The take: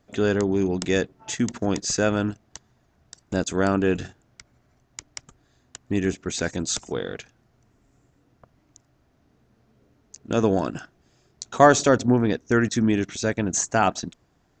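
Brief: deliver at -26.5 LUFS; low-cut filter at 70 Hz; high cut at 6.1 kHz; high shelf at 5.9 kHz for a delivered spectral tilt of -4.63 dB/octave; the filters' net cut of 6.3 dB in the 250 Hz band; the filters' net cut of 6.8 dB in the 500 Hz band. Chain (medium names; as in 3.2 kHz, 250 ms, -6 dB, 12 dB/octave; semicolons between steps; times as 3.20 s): high-pass 70 Hz; low-pass 6.1 kHz; peaking EQ 250 Hz -6 dB; peaking EQ 500 Hz -7 dB; treble shelf 5.9 kHz -4.5 dB; trim +1.5 dB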